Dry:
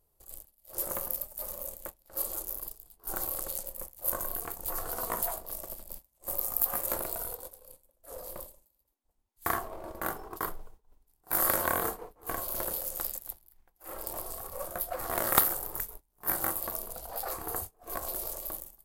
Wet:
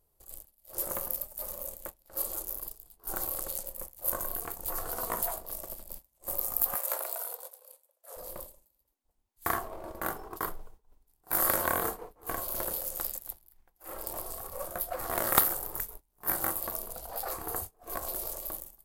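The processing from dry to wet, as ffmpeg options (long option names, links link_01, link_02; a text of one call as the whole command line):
ffmpeg -i in.wav -filter_complex "[0:a]asplit=3[link_01][link_02][link_03];[link_01]afade=type=out:start_time=6.74:duration=0.02[link_04];[link_02]highpass=frequency=510:width=0.5412,highpass=frequency=510:width=1.3066,afade=type=in:start_time=6.74:duration=0.02,afade=type=out:start_time=8.16:duration=0.02[link_05];[link_03]afade=type=in:start_time=8.16:duration=0.02[link_06];[link_04][link_05][link_06]amix=inputs=3:normalize=0" out.wav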